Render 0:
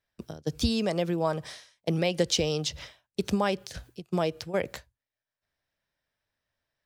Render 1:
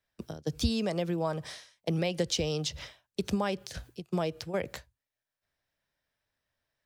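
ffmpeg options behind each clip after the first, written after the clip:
-filter_complex "[0:a]acrossover=split=150[s0][s1];[s1]acompressor=threshold=0.02:ratio=1.5[s2];[s0][s2]amix=inputs=2:normalize=0"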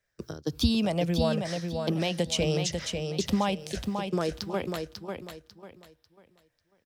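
-af "afftfilt=real='re*pow(10,8/40*sin(2*PI*(0.53*log(max(b,1)*sr/1024/100)/log(2)-(-0.76)*(pts-256)/sr)))':imag='im*pow(10,8/40*sin(2*PI*(0.53*log(max(b,1)*sr/1024/100)/log(2)-(-0.76)*(pts-256)/sr)))':win_size=1024:overlap=0.75,aecho=1:1:545|1090|1635|2180:0.531|0.154|0.0446|0.0129,volume=1.26"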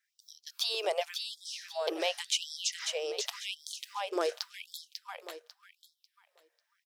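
-af "afftfilt=real='re*gte(b*sr/1024,330*pow(3300/330,0.5+0.5*sin(2*PI*0.89*pts/sr)))':imag='im*gte(b*sr/1024,330*pow(3300/330,0.5+0.5*sin(2*PI*0.89*pts/sr)))':win_size=1024:overlap=0.75"

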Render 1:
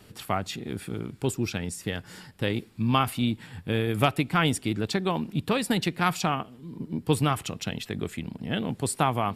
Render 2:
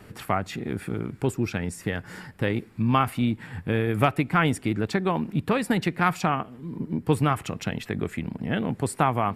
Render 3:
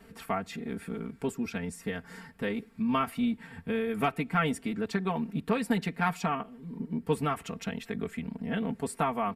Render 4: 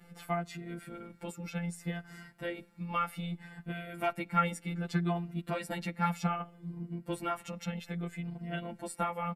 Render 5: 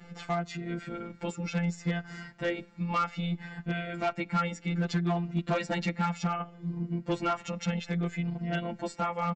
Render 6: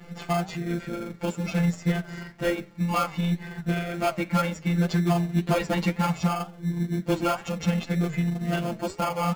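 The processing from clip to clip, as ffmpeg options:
-filter_complex "[0:a]highshelf=f=2600:t=q:w=1.5:g=-6.5,asplit=2[s0][s1];[s1]acompressor=threshold=0.0224:ratio=6,volume=0.841[s2];[s0][s2]amix=inputs=2:normalize=0"
-af "aecho=1:1:4.4:0.93,volume=0.376"
-filter_complex "[0:a]afftfilt=real='hypot(re,im)*cos(PI*b)':imag='0':win_size=1024:overlap=0.75,asplit=2[s0][s1];[s1]adelay=7.7,afreqshift=-0.64[s2];[s0][s2]amix=inputs=2:normalize=1,volume=1.41"
-af "alimiter=limit=0.0668:level=0:latency=1:release=395,aresample=16000,volume=26.6,asoftclip=hard,volume=0.0376,aresample=44100,volume=2.24"
-filter_complex "[0:a]asplit=2[s0][s1];[s1]acrusher=samples=23:mix=1:aa=0.000001,volume=0.562[s2];[s0][s2]amix=inputs=2:normalize=0,flanger=delay=7.8:depth=4.2:regen=-83:speed=2:shape=triangular,volume=2.24"

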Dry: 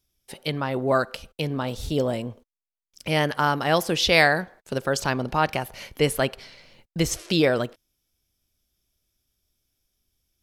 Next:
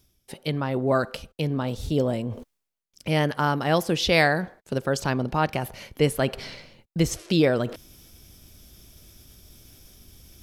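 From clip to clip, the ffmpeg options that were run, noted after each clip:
-af "equalizer=f=150:w=0.32:g=6,areverse,acompressor=mode=upward:threshold=0.0631:ratio=2.5,areverse,volume=0.668"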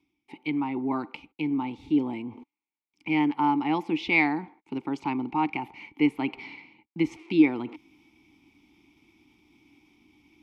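-filter_complex "[0:a]asplit=3[s0][s1][s2];[s0]bandpass=f=300:t=q:w=8,volume=1[s3];[s1]bandpass=f=870:t=q:w=8,volume=0.501[s4];[s2]bandpass=f=2240:t=q:w=8,volume=0.355[s5];[s3][s4][s5]amix=inputs=3:normalize=0,acrossover=split=530|2500[s6][s7][s8];[s7]crystalizer=i=9.5:c=0[s9];[s6][s9][s8]amix=inputs=3:normalize=0,volume=2.24"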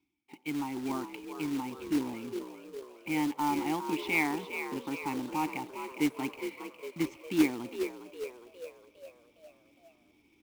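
-filter_complex "[0:a]asplit=7[s0][s1][s2][s3][s4][s5][s6];[s1]adelay=409,afreqshift=59,volume=0.355[s7];[s2]adelay=818,afreqshift=118,volume=0.191[s8];[s3]adelay=1227,afreqshift=177,volume=0.104[s9];[s4]adelay=1636,afreqshift=236,volume=0.0556[s10];[s5]adelay=2045,afreqshift=295,volume=0.0302[s11];[s6]adelay=2454,afreqshift=354,volume=0.0162[s12];[s0][s7][s8][s9][s10][s11][s12]amix=inputs=7:normalize=0,acrusher=bits=3:mode=log:mix=0:aa=0.000001,volume=0.473"

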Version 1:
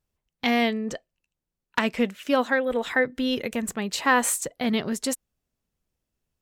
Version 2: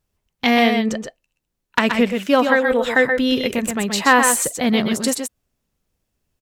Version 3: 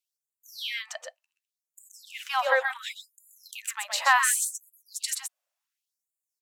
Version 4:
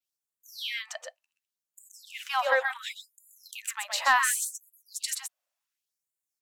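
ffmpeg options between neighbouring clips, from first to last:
-af "aecho=1:1:118|128:0.168|0.501,volume=2.11"
-af "afftfilt=real='re*gte(b*sr/1024,490*pow(6900/490,0.5+0.5*sin(2*PI*0.69*pts/sr)))':imag='im*gte(b*sr/1024,490*pow(6900/490,0.5+0.5*sin(2*PI*0.69*pts/sr)))':win_size=1024:overlap=0.75,volume=0.501"
-af "acontrast=57,adynamicequalizer=threshold=0.0141:dfrequency=8700:dqfactor=1.4:tfrequency=8700:tqfactor=1.4:attack=5:release=100:ratio=0.375:range=2:mode=cutabove:tftype=bell,volume=0.447"

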